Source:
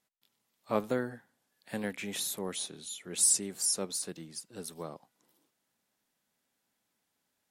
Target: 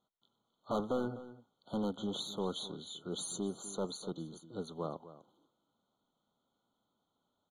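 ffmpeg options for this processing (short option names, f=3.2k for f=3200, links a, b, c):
-filter_complex "[0:a]lowpass=3.4k,volume=32dB,asoftclip=hard,volume=-32dB,asplit=2[a][b];[b]adelay=250.7,volume=-15dB,highshelf=f=4k:g=-5.64[c];[a][c]amix=inputs=2:normalize=0,afftfilt=real='re*eq(mod(floor(b*sr/1024/1500),2),0)':imag='im*eq(mod(floor(b*sr/1024/1500),2),0)':win_size=1024:overlap=0.75,volume=3dB"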